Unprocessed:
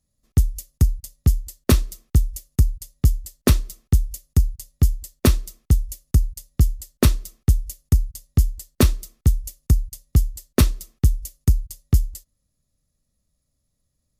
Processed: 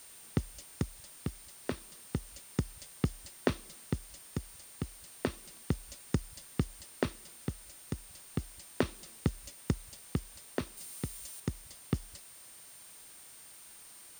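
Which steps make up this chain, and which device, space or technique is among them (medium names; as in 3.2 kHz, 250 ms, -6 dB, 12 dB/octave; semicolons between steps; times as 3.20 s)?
medium wave at night (band-pass 160–3500 Hz; compression, threshold -27 dBFS, peak gain reduction 13 dB; tremolo 0.32 Hz, depth 58%; whistle 9 kHz -55 dBFS; white noise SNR 16 dB); 10.77–11.40 s: treble shelf 3.8 kHz +7.5 dB; trim +1.5 dB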